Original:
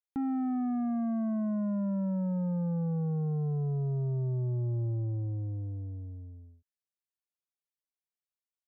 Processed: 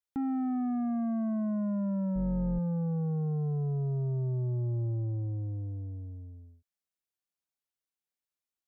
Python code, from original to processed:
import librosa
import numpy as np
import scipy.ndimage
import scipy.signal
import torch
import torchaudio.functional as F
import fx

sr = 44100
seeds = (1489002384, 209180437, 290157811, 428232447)

y = fx.octave_divider(x, sr, octaves=2, level_db=-5.0, at=(2.15, 2.59))